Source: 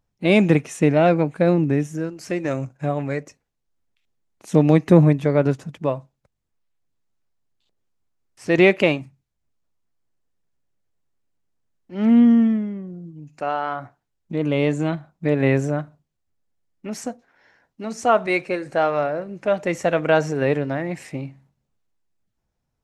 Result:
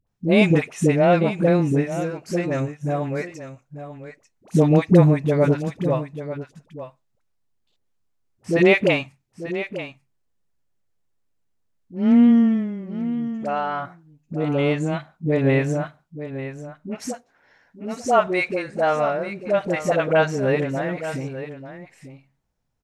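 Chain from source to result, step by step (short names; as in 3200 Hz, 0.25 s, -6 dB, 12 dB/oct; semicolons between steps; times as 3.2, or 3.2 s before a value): bell 320 Hz -3 dB 0.21 oct; dispersion highs, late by 71 ms, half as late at 580 Hz; on a send: echo 0.891 s -12 dB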